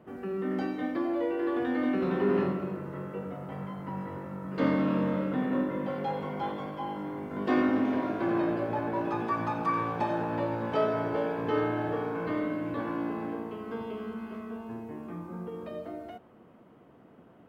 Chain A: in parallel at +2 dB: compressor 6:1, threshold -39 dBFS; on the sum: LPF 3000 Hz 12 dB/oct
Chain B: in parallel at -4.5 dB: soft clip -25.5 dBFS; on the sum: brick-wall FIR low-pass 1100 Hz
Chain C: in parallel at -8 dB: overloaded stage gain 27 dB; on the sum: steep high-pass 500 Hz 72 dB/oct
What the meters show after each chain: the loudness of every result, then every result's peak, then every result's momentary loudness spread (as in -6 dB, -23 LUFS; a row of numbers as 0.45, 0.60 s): -29.0, -28.5, -33.5 LUFS; -12.5, -12.5, -15.5 dBFS; 9, 11, 15 LU